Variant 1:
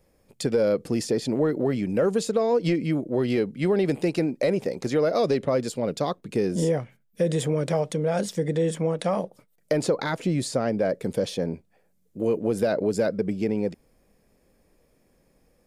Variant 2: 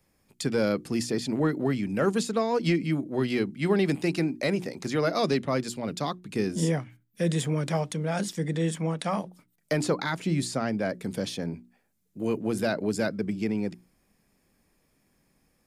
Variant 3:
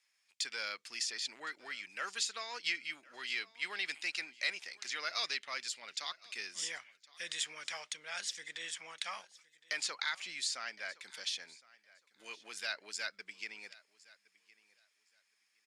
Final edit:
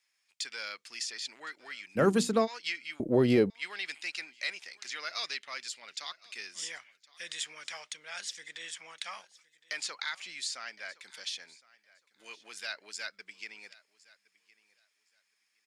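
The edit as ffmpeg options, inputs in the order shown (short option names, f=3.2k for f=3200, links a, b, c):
-filter_complex "[2:a]asplit=3[a][b][c];[a]atrim=end=1.99[d];[1:a]atrim=start=1.95:end=2.48[e];[b]atrim=start=2.44:end=3.002[f];[0:a]atrim=start=2.998:end=3.502[g];[c]atrim=start=3.498[h];[d][e]acrossfade=d=0.04:c1=tri:c2=tri[i];[i][f]acrossfade=d=0.04:c1=tri:c2=tri[j];[j][g]acrossfade=d=0.004:c1=hsin:c2=hsin[k];[k][h]acrossfade=d=0.004:c1=hsin:c2=hsin"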